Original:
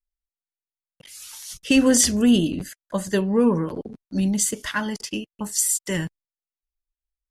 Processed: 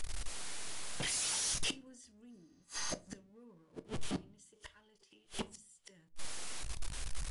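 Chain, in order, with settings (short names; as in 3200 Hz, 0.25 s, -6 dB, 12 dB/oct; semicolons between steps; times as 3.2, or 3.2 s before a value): zero-crossing step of -29.5 dBFS; 2.33–2.99 spectral repair 800–6500 Hz after; 3.86–5.91 thirty-one-band EQ 250 Hz -9 dB, 400 Hz +8 dB, 3150 Hz +8 dB; flipped gate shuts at -20 dBFS, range -40 dB; soft clip -30.5 dBFS, distortion -14 dB; brick-wall FIR low-pass 11000 Hz; shoebox room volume 140 m³, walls furnished, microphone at 0.33 m; gain -1 dB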